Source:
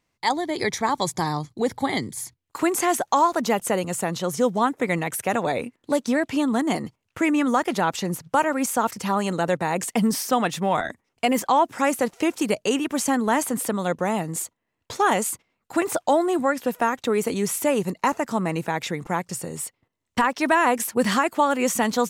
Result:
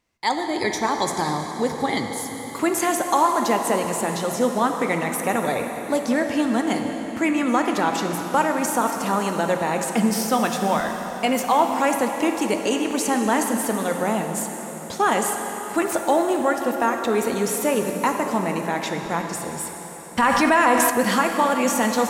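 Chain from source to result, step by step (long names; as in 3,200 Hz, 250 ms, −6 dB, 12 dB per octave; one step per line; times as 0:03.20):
parametric band 150 Hz −5 dB 0.42 octaves
dense smooth reverb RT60 4.5 s, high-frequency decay 0.85×, DRR 3.5 dB
0:20.22–0:20.90: envelope flattener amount 70%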